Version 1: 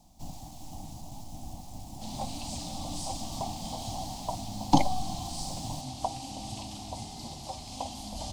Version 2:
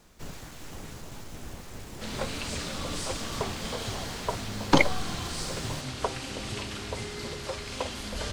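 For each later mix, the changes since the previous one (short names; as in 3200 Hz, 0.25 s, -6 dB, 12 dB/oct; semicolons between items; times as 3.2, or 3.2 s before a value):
background: add low shelf 180 Hz +5 dB; master: remove EQ curve 300 Hz 0 dB, 430 Hz -22 dB, 770 Hz +8 dB, 1500 Hz -27 dB, 3100 Hz -8 dB, 5000 Hz -2 dB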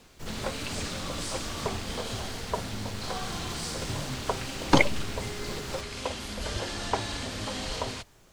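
background: entry -1.75 s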